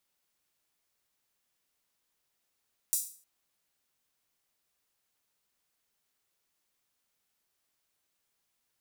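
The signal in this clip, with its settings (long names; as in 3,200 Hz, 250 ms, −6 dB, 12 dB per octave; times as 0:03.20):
open synth hi-hat length 0.31 s, high-pass 7,600 Hz, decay 0.43 s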